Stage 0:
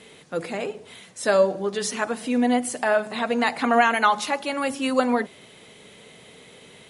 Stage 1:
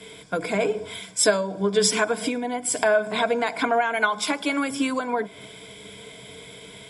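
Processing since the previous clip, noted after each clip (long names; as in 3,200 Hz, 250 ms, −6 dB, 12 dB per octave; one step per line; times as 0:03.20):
downward compressor 12 to 1, threshold −29 dBFS, peak gain reduction 17 dB
EQ curve with evenly spaced ripples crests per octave 1.7, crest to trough 12 dB
multiband upward and downward expander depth 40%
level +8.5 dB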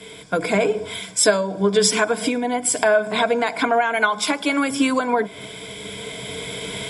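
camcorder AGC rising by 5.1 dB per second
level +3 dB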